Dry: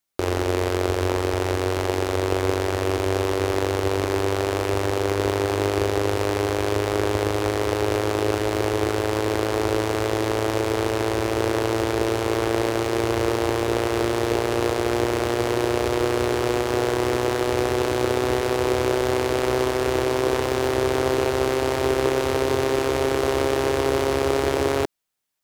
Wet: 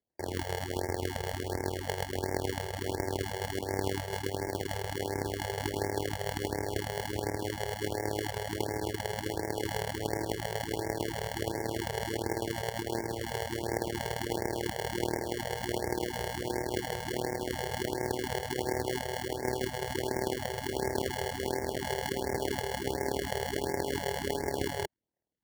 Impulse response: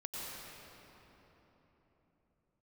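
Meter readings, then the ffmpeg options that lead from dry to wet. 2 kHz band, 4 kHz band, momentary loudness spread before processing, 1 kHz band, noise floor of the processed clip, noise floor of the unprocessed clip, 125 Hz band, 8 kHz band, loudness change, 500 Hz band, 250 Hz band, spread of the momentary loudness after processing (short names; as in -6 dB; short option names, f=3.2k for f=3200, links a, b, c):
-9.5 dB, -8.5 dB, 2 LU, -10.0 dB, -40 dBFS, -25 dBFS, -10.0 dB, -7.0 dB, -11.5 dB, -13.0 dB, -12.0 dB, 2 LU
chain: -af "tremolo=f=38:d=0.667,acrusher=samples=35:mix=1:aa=0.000001,highpass=54,afftfilt=real='re*(1-between(b*sr/1024,250*pow(3400/250,0.5+0.5*sin(2*PI*1.4*pts/sr))/1.41,250*pow(3400/250,0.5+0.5*sin(2*PI*1.4*pts/sr))*1.41))':imag='im*(1-between(b*sr/1024,250*pow(3400/250,0.5+0.5*sin(2*PI*1.4*pts/sr))/1.41,250*pow(3400/250,0.5+0.5*sin(2*PI*1.4*pts/sr))*1.41))':win_size=1024:overlap=0.75,volume=-7.5dB"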